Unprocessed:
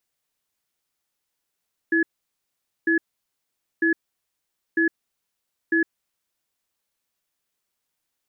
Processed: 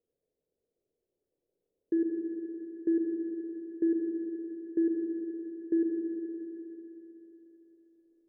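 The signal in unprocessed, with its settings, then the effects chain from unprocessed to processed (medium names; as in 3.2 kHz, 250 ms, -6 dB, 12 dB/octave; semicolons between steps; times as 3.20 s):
cadence 330 Hz, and 1.7 kHz, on 0.11 s, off 0.84 s, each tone -19.5 dBFS 3.96 s
FFT filter 240 Hz 0 dB, 460 Hz +14 dB, 1.1 kHz -27 dB; peak limiter -22 dBFS; Schroeder reverb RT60 3.8 s, combs from 28 ms, DRR 0 dB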